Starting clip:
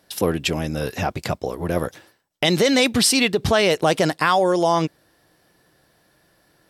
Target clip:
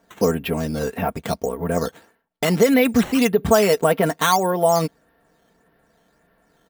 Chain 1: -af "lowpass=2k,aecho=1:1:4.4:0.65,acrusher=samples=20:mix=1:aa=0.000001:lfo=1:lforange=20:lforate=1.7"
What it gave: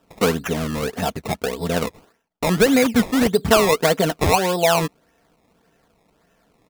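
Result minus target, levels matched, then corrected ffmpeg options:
decimation with a swept rate: distortion +10 dB
-af "lowpass=2k,aecho=1:1:4.4:0.65,acrusher=samples=6:mix=1:aa=0.000001:lfo=1:lforange=6:lforate=1.7"

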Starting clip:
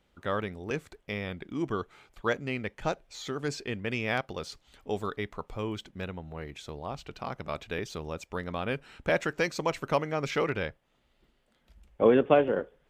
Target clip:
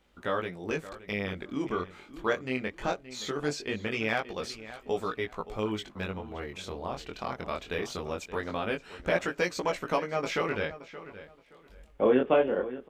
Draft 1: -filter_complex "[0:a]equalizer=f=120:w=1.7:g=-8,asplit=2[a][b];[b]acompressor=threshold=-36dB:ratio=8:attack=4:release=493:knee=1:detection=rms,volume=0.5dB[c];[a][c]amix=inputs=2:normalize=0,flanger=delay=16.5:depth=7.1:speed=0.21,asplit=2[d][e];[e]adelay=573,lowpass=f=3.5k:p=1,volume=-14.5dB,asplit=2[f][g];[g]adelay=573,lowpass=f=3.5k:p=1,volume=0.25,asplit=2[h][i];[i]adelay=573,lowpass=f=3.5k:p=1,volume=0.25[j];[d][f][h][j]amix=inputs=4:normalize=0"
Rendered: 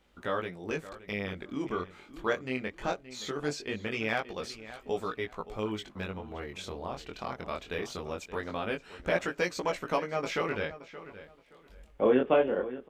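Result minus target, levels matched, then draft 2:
compressor: peak gain reduction +6 dB
-filter_complex "[0:a]equalizer=f=120:w=1.7:g=-8,asplit=2[a][b];[b]acompressor=threshold=-29dB:ratio=8:attack=4:release=493:knee=1:detection=rms,volume=0.5dB[c];[a][c]amix=inputs=2:normalize=0,flanger=delay=16.5:depth=7.1:speed=0.21,asplit=2[d][e];[e]adelay=573,lowpass=f=3.5k:p=1,volume=-14.5dB,asplit=2[f][g];[g]adelay=573,lowpass=f=3.5k:p=1,volume=0.25,asplit=2[h][i];[i]adelay=573,lowpass=f=3.5k:p=1,volume=0.25[j];[d][f][h][j]amix=inputs=4:normalize=0"

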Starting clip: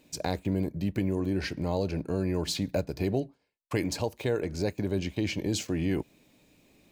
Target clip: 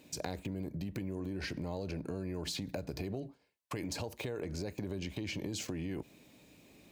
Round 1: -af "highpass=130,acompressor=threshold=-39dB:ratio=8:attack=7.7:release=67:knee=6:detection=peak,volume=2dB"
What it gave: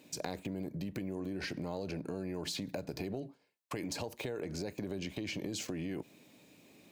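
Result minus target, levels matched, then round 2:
125 Hz band -2.5 dB
-af "highpass=47,acompressor=threshold=-39dB:ratio=8:attack=7.7:release=67:knee=6:detection=peak,volume=2dB"

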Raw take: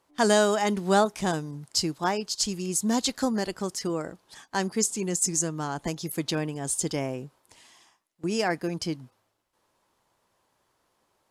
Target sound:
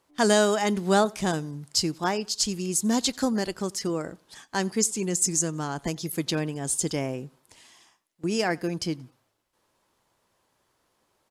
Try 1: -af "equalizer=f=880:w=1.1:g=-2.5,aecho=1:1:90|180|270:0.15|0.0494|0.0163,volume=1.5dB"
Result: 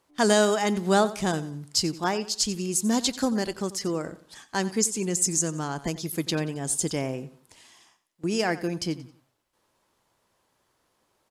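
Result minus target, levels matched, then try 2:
echo-to-direct +10 dB
-af "equalizer=f=880:w=1.1:g=-2.5,aecho=1:1:90|180:0.0473|0.0156,volume=1.5dB"

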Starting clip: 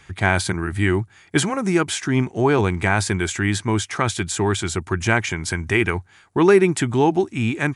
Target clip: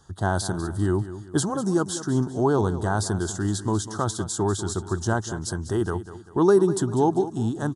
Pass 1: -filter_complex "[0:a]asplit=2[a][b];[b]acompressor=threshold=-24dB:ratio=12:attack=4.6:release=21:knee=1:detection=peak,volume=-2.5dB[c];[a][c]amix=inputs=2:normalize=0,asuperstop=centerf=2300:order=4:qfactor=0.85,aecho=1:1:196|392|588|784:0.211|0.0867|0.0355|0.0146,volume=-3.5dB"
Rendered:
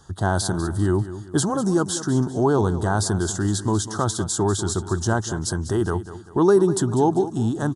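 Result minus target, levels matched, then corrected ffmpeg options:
compressor: peak gain reduction +14.5 dB
-af "asuperstop=centerf=2300:order=4:qfactor=0.85,aecho=1:1:196|392|588|784:0.211|0.0867|0.0355|0.0146,volume=-3.5dB"

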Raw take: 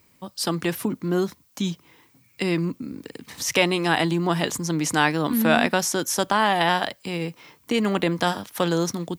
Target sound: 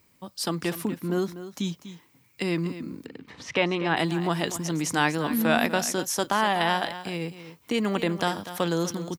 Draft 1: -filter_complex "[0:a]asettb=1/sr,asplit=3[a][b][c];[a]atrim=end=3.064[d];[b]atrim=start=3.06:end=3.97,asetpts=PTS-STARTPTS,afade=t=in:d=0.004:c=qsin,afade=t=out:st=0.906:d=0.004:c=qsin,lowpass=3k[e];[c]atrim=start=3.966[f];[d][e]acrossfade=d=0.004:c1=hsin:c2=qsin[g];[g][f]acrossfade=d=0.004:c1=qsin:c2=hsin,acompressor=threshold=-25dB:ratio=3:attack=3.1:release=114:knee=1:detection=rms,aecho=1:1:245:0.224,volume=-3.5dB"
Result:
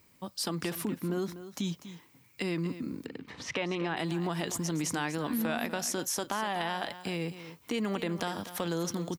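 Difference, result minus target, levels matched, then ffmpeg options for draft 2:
compressor: peak gain reduction +11.5 dB
-filter_complex "[0:a]asettb=1/sr,asplit=3[a][b][c];[a]atrim=end=3.064[d];[b]atrim=start=3.06:end=3.97,asetpts=PTS-STARTPTS,afade=t=in:d=0.004:c=qsin,afade=t=out:st=0.906:d=0.004:c=qsin,lowpass=3k[e];[c]atrim=start=3.966[f];[d][e]acrossfade=d=0.004:c1=hsin:c2=qsin[g];[g][f]acrossfade=d=0.004:c1=qsin:c2=hsin,aecho=1:1:245:0.224,volume=-3.5dB"

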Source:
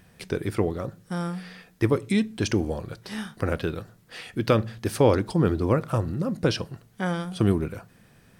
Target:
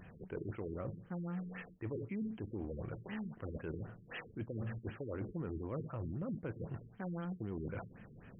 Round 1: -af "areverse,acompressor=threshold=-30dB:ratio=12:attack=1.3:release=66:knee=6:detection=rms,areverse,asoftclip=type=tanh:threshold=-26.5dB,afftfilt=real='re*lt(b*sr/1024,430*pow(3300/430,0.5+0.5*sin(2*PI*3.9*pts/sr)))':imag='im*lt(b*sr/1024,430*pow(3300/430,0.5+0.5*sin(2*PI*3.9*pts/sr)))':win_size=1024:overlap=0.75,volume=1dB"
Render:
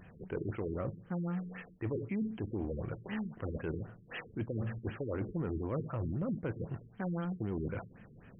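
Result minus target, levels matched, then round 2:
compressor: peak gain reduction -6 dB
-af "areverse,acompressor=threshold=-36.5dB:ratio=12:attack=1.3:release=66:knee=6:detection=rms,areverse,asoftclip=type=tanh:threshold=-26.5dB,afftfilt=real='re*lt(b*sr/1024,430*pow(3300/430,0.5+0.5*sin(2*PI*3.9*pts/sr)))':imag='im*lt(b*sr/1024,430*pow(3300/430,0.5+0.5*sin(2*PI*3.9*pts/sr)))':win_size=1024:overlap=0.75,volume=1dB"

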